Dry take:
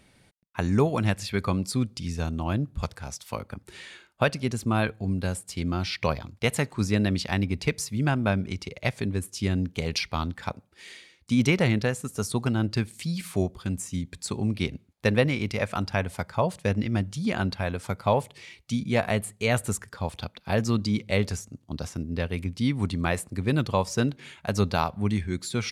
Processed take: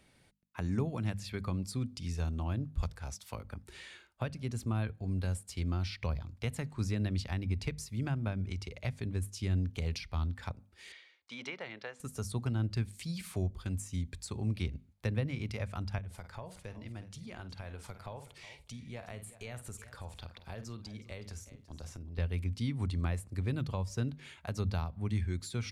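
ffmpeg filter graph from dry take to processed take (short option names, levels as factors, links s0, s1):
-filter_complex "[0:a]asettb=1/sr,asplit=3[s0][s1][s2];[s0]atrim=end=10.924[s3];[s1]atrim=start=10.92:end=12,asetpts=PTS-STARTPTS,afade=t=in:d=0.004:c=qsin,afade=t=out:st=1.076:d=0.004:c=qsin,highpass=600,lowpass=3600,bandreject=f=2600:w=20[s4];[s2]atrim=start=11.996[s5];[s3][s4]acrossfade=d=0.004:c1=hsin:c2=qsin[s6];[s6][s5]acrossfade=d=0.004:c1=qsin:c2=hsin,asettb=1/sr,asplit=3[s7][s8][s9];[s7]atrim=end=15.984[s10];[s8]atrim=start=15.98:end=22.18,asetpts=PTS-STARTPTS,afade=t=in:d=0.004:c=qsin,afade=t=out:st=6.196:d=0.004:c=qsin,asplit=2[s11][s12];[s12]adelay=49,volume=0.211[s13];[s11][s13]amix=inputs=2:normalize=0,atrim=end_sample=273420,acompressor=threshold=0.01:ratio=2.5:attack=3.2:release=140:knee=1:detection=peak,aecho=1:1:368:0.158,atrim=end_sample=273420[s14];[s9]atrim=start=22.176[s15];[s10][s14]acrossfade=d=0.004:c1=hsin:c2=qsin[s16];[s16][s15]acrossfade=d=0.004:c1=qsin:c2=hsin,asubboost=boost=4.5:cutoff=78,acrossover=split=260[s17][s18];[s18]acompressor=threshold=0.0158:ratio=3[s19];[s17][s19]amix=inputs=2:normalize=0,bandreject=f=50:t=h:w=6,bandreject=f=100:t=h:w=6,bandreject=f=150:t=h:w=6,bandreject=f=200:t=h:w=6,bandreject=f=250:t=h:w=6,volume=0.501"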